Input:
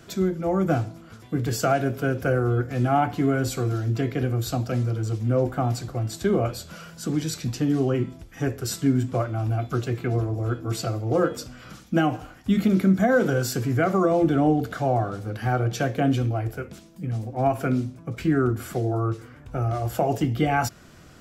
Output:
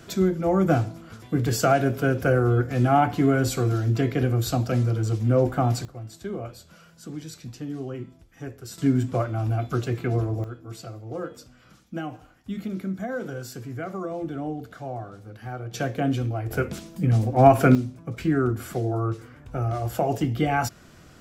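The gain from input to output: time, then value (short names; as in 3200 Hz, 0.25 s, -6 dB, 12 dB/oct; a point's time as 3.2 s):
+2 dB
from 5.85 s -10.5 dB
from 8.78 s 0 dB
from 10.44 s -11 dB
from 15.74 s -2.5 dB
from 16.51 s +8 dB
from 17.75 s -1 dB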